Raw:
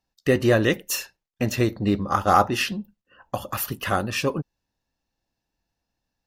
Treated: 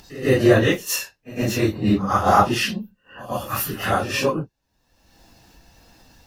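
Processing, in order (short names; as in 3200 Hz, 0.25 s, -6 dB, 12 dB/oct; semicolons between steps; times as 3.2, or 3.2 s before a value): phase scrambler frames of 0.1 s; pre-echo 0.109 s -17.5 dB; upward compressor, threshold -33 dBFS; gain +3 dB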